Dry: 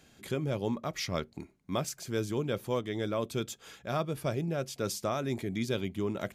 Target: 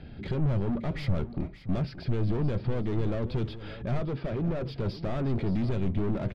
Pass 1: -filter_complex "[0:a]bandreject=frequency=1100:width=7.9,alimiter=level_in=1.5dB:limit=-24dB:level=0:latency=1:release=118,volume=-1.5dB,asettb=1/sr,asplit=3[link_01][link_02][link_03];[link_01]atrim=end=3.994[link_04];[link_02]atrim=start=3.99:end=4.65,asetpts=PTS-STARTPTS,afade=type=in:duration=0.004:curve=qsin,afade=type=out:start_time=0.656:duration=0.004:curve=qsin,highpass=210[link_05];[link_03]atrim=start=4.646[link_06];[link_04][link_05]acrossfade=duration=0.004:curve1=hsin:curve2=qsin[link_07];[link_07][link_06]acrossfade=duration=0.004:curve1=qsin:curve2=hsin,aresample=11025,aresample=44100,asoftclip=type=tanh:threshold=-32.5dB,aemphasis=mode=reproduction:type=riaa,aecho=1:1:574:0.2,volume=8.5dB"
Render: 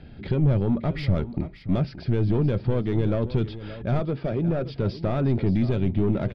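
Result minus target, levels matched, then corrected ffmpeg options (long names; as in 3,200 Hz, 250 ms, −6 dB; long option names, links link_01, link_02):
soft clipping: distortion −7 dB
-filter_complex "[0:a]bandreject=frequency=1100:width=7.9,alimiter=level_in=1.5dB:limit=-24dB:level=0:latency=1:release=118,volume=-1.5dB,asettb=1/sr,asplit=3[link_01][link_02][link_03];[link_01]atrim=end=3.994[link_04];[link_02]atrim=start=3.99:end=4.65,asetpts=PTS-STARTPTS,afade=type=in:duration=0.004:curve=qsin,afade=type=out:start_time=0.656:duration=0.004:curve=qsin,highpass=210[link_05];[link_03]atrim=start=4.646[link_06];[link_04][link_05]acrossfade=duration=0.004:curve1=hsin:curve2=qsin[link_07];[link_07][link_06]acrossfade=duration=0.004:curve1=qsin:curve2=hsin,aresample=11025,aresample=44100,asoftclip=type=tanh:threshold=-42dB,aemphasis=mode=reproduction:type=riaa,aecho=1:1:574:0.2,volume=8.5dB"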